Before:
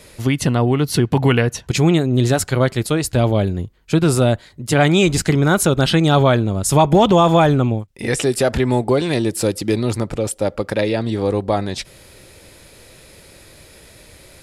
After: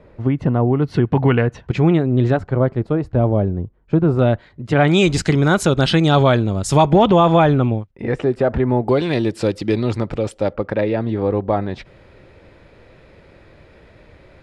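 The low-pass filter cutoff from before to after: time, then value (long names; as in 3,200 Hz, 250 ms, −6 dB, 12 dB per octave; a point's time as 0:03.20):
1,100 Hz
from 0:00.82 1,900 Hz
from 0:02.37 1,000 Hz
from 0:04.19 2,300 Hz
from 0:04.88 6,200 Hz
from 0:06.90 3,200 Hz
from 0:07.91 1,400 Hz
from 0:08.88 3,700 Hz
from 0:10.53 1,900 Hz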